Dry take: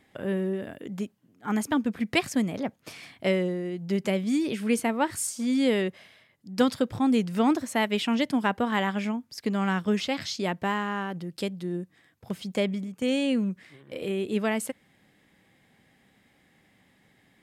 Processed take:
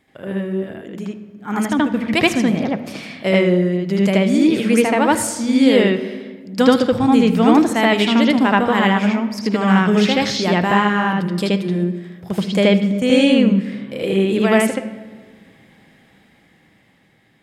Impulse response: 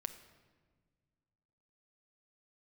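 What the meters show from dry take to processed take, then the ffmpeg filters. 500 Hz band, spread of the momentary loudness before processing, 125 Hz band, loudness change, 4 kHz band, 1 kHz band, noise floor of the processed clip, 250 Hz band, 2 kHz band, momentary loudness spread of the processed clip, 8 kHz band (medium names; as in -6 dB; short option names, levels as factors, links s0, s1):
+11.5 dB, 12 LU, +12.5 dB, +11.5 dB, +11.0 dB, +11.5 dB, -55 dBFS, +11.5 dB, +11.5 dB, 13 LU, +7.5 dB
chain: -filter_complex "[0:a]asplit=2[s0][s1];[1:a]atrim=start_sample=2205,lowpass=5000,adelay=78[s2];[s1][s2]afir=irnorm=-1:irlink=0,volume=1.88[s3];[s0][s3]amix=inputs=2:normalize=0,dynaudnorm=f=450:g=7:m=3.76"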